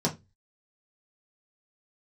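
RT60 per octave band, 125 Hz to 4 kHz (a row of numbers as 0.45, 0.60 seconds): 0.40, 0.30, 0.25, 0.20, 0.20, 0.20 seconds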